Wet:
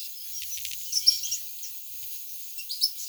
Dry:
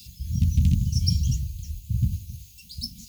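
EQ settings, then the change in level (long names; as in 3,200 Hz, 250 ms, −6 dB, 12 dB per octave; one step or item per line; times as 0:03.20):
elliptic high-pass filter 1,200 Hz, stop band 50 dB
high-shelf EQ 12,000 Hz +9.5 dB
+8.5 dB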